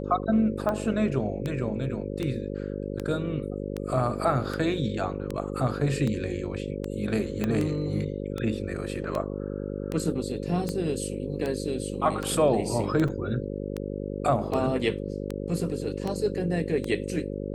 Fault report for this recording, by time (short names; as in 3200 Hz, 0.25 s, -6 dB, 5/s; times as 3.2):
buzz 50 Hz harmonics 11 -33 dBFS
tick 78 rpm -17 dBFS
7.44 pop -14 dBFS
13.08 gap 4.5 ms